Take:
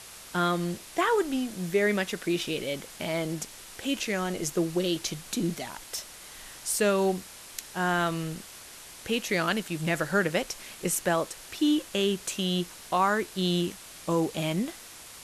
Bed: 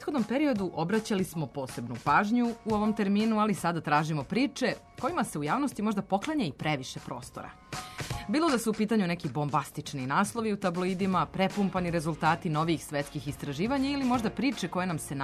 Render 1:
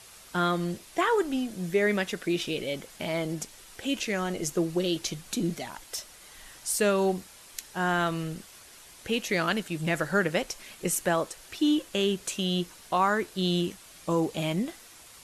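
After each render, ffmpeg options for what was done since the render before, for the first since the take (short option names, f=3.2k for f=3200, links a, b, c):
-af "afftdn=nr=6:nf=-47"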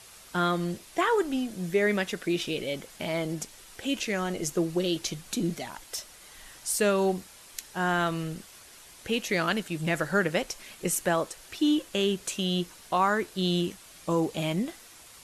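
-af anull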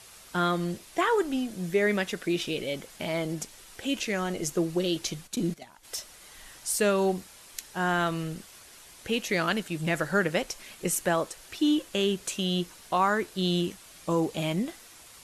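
-filter_complex "[0:a]asplit=3[a][b][c];[a]afade=t=out:st=5.26:d=0.02[d];[b]agate=range=-13dB:threshold=-34dB:ratio=16:release=100:detection=peak,afade=t=in:st=5.26:d=0.02,afade=t=out:st=5.83:d=0.02[e];[c]afade=t=in:st=5.83:d=0.02[f];[d][e][f]amix=inputs=3:normalize=0"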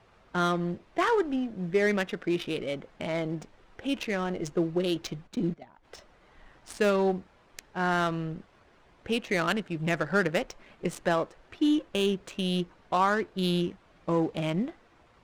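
-af "adynamicsmooth=sensitivity=3.5:basefreq=1.4k"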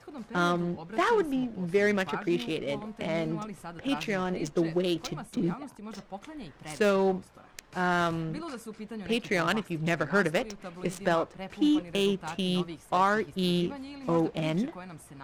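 -filter_complex "[1:a]volume=-13dB[a];[0:a][a]amix=inputs=2:normalize=0"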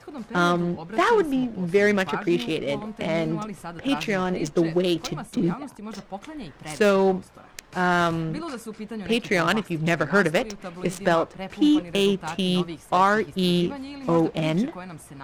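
-af "volume=5.5dB"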